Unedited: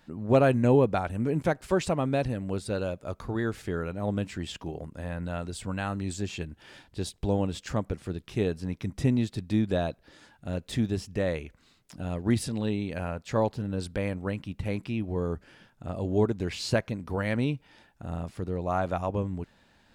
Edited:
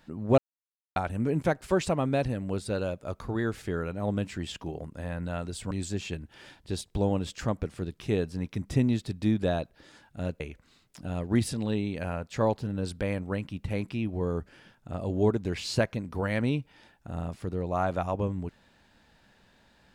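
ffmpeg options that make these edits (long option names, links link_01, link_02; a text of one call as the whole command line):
ffmpeg -i in.wav -filter_complex "[0:a]asplit=5[link_01][link_02][link_03][link_04][link_05];[link_01]atrim=end=0.38,asetpts=PTS-STARTPTS,afade=type=out:start_time=0.376:duration=0.004:curve=hsin[link_06];[link_02]atrim=start=0.38:end=0.96,asetpts=PTS-STARTPTS,volume=0[link_07];[link_03]atrim=start=0.96:end=5.712,asetpts=PTS-STARTPTS,afade=type=in:duration=0.004:curve=hsin[link_08];[link_04]atrim=start=5.988:end=10.682[link_09];[link_05]atrim=start=11.348[link_10];[link_06][link_07][link_08]concat=n=3:v=0:a=1[link_11];[link_11][link_09]acrossfade=duration=0.004:curve1=hsin:curve2=hsin[link_12];[link_12][link_10]acrossfade=duration=0.004:curve1=hsin:curve2=hsin" out.wav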